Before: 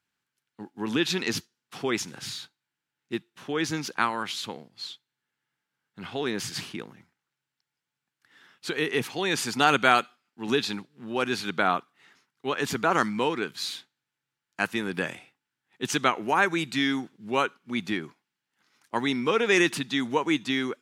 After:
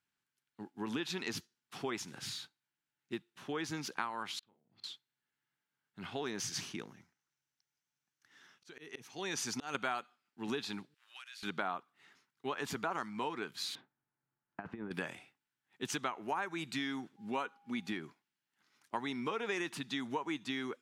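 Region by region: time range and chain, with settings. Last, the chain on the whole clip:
4.39–4.84 s: inverted gate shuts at -34 dBFS, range -28 dB + tape spacing loss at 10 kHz 30 dB + doubling 39 ms -7 dB
6.24–9.75 s: peaking EQ 6 kHz +10.5 dB 0.3 oct + slow attack 522 ms + hard clipper -16.5 dBFS
10.94–11.43 s: Bessel high-pass 2 kHz, order 4 + compression 12:1, threshold -40 dBFS
13.75–14.91 s: low-pass 1.1 kHz + compressor with a negative ratio -35 dBFS, ratio -0.5
17.16–17.93 s: comb 4.1 ms, depth 31% + whistle 810 Hz -58 dBFS
whole clip: band-stop 500 Hz, Q 12; dynamic bell 910 Hz, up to +6 dB, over -37 dBFS, Q 1.2; compression 4:1, threshold -29 dBFS; trim -6 dB

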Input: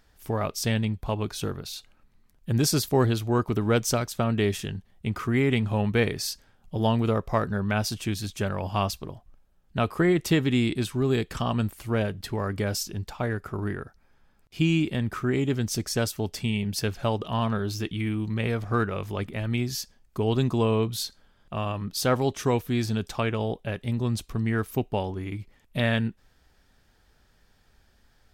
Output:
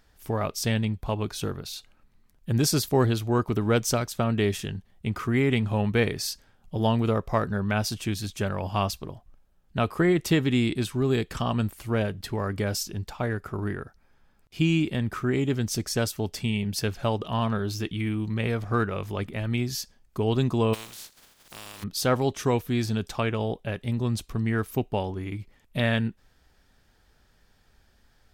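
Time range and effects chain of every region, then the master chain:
20.73–21.82 s: spectral contrast reduction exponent 0.27 + compression 2:1, threshold -51 dBFS + peaking EQ 5.4 kHz +2.5 dB 2.2 oct
whole clip: none

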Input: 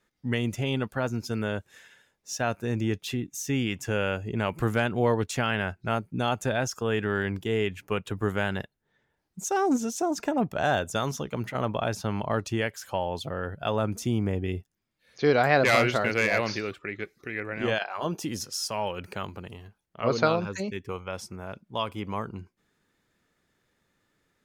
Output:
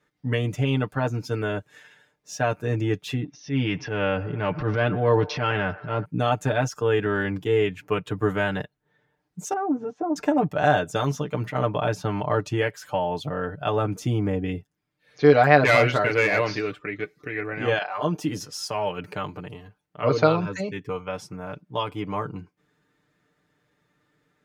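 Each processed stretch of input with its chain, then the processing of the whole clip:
3.24–6.05 s: steep low-pass 5.8 kHz 96 dB/octave + transient shaper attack -10 dB, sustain +6 dB + feedback echo behind a band-pass 120 ms, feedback 65%, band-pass 970 Hz, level -17 dB
9.53–10.16 s: low-pass 1.2 kHz + compression 4:1, threshold -26 dBFS
whole clip: high-pass 51 Hz; treble shelf 4 kHz -9.5 dB; comb 6.7 ms, depth 77%; trim +2.5 dB

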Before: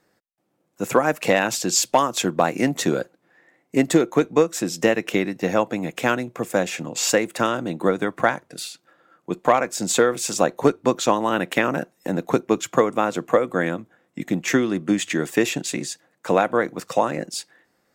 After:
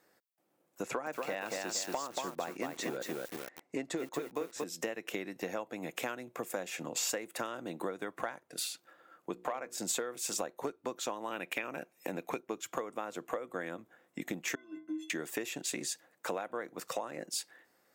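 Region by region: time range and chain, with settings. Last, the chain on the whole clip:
0.83–4.64 s: low-pass 6.7 kHz + band-stop 3.1 kHz, Q 20 + bit-crushed delay 232 ms, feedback 35%, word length 6-bit, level -3.5 dB
9.32–9.78 s: treble shelf 5 kHz -5 dB + hum notches 60/120/180/240/300/360/420/480 Hz
11.31–12.40 s: de-esser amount 30% + peaking EQ 2.4 kHz +13 dB 0.21 oct
14.55–15.10 s: high-pass 100 Hz + treble shelf 2.2 kHz -9.5 dB + inharmonic resonator 310 Hz, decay 0.37 s, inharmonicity 0.03
whole clip: tone controls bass -9 dB, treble -3 dB; compression 6:1, threshold -32 dBFS; treble shelf 9.5 kHz +11.5 dB; trim -3 dB

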